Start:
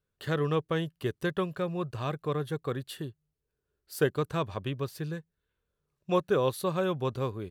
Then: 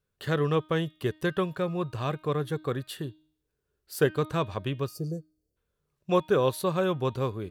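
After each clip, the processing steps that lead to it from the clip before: time-frequency box 4.87–5.57 s, 760–4300 Hz -29 dB; de-hum 310.3 Hz, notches 16; trim +2.5 dB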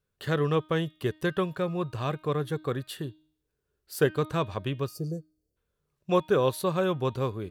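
no audible change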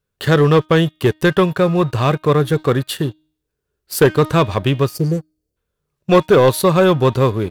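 waveshaping leveller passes 2; trim +7.5 dB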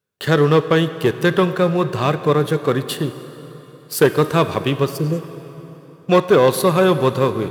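high-pass 140 Hz 12 dB/octave; plate-style reverb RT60 3.9 s, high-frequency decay 0.75×, DRR 11.5 dB; trim -1.5 dB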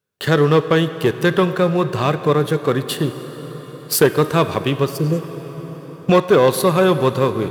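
recorder AGC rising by 7.3 dB/s

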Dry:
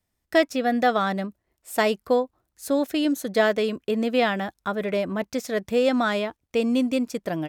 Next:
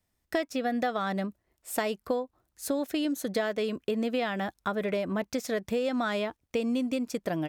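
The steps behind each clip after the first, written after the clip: compression 6:1, threshold -26 dBFS, peak gain reduction 11.5 dB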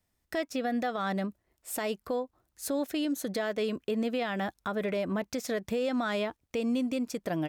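peak limiter -22.5 dBFS, peak gain reduction 7.5 dB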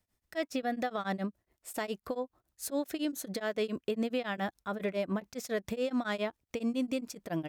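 tremolo of two beating tones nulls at 7.2 Hz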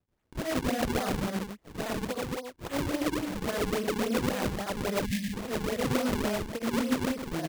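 loudspeakers at several distances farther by 26 m -4 dB, 41 m -1 dB, 61 m -4 dB, 91 m -7 dB; decimation with a swept rate 40×, swing 160% 3.6 Hz; time-frequency box 5.06–5.34 s, 270–1600 Hz -28 dB

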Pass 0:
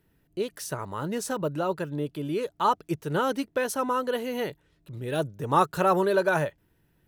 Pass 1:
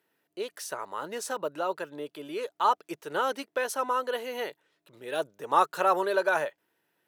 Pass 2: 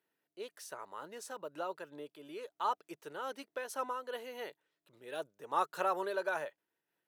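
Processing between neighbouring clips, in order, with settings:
high-pass 500 Hz 12 dB/octave; treble shelf 7.6 kHz -4 dB
random flutter of the level, depth 60%; trim -7 dB

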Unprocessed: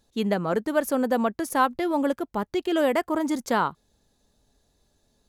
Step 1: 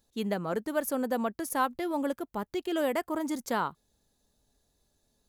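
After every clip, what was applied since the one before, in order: treble shelf 9.9 kHz +10 dB; trim -6.5 dB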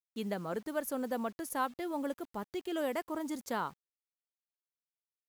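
bit crusher 9-bit; trim -5.5 dB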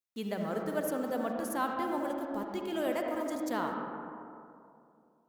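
reverberation RT60 2.6 s, pre-delay 27 ms, DRR 1 dB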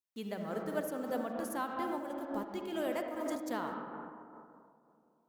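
random flutter of the level, depth 60%

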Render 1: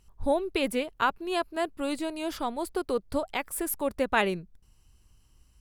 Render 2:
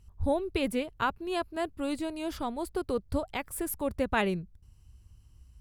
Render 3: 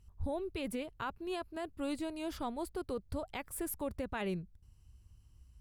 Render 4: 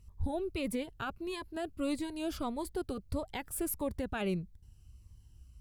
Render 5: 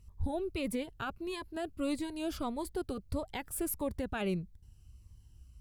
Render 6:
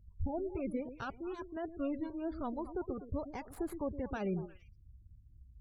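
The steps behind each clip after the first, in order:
peaking EQ 79 Hz +14.5 dB 2.2 oct; trim -4 dB
peak limiter -24 dBFS, peak gain reduction 9.5 dB; trim -4.5 dB
Shepard-style phaser falling 1.6 Hz; trim +4 dB
no audible change
median filter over 15 samples; repeats whose band climbs or falls 115 ms, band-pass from 350 Hz, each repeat 1.4 oct, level -8 dB; spectral gate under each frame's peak -30 dB strong; trim -2 dB

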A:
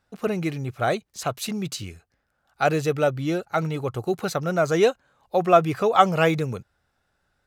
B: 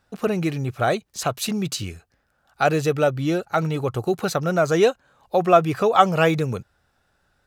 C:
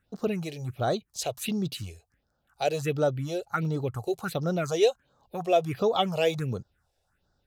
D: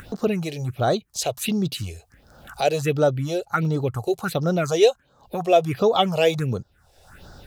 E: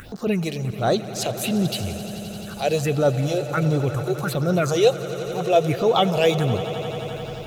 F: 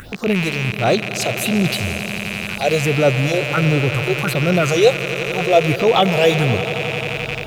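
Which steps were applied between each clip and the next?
band-stop 2.1 kHz, Q 24; in parallel at -2 dB: compression, threshold -28 dBFS, peak gain reduction 17 dB
dynamic bell 3.5 kHz, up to +5 dB, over -38 dBFS, Q 1.3; phase shifter stages 4, 1.4 Hz, lowest notch 200–2500 Hz; trim -5 dB
upward compressor, threshold -31 dBFS; trim +6 dB
transient shaper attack -8 dB, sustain 0 dB; echo with a slow build-up 87 ms, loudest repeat 5, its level -17 dB; trim +2.5 dB
rattle on loud lows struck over -36 dBFS, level -16 dBFS; trim +4 dB

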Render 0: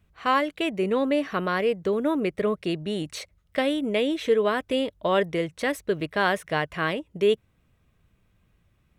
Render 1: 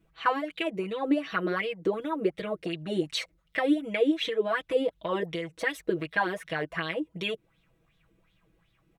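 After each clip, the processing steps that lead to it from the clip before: comb 6.1 ms, depth 91%; compression 5:1, threshold -25 dBFS, peak gain reduction 10.5 dB; sweeping bell 2.7 Hz 300–3800 Hz +16 dB; trim -6.5 dB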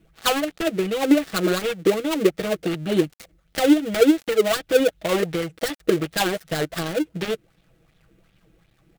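dead-time distortion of 0.22 ms; peaking EQ 1 kHz -10 dB 0.22 oct; trim +9 dB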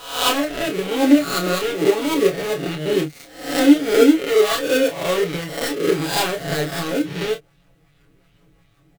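reverse spectral sustain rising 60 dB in 0.63 s; comb 7.1 ms, depth 72%; on a send: early reflections 28 ms -6.5 dB, 47 ms -15.5 dB; on the sum: trim -2.5 dB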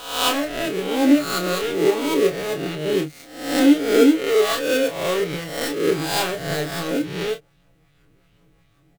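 reverse spectral sustain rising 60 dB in 0.67 s; trim -3.5 dB

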